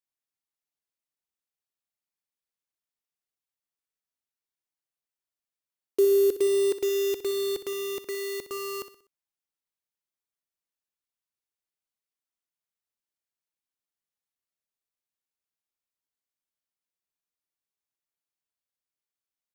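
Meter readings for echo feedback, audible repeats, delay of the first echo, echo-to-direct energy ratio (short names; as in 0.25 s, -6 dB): 42%, 3, 62 ms, -11.5 dB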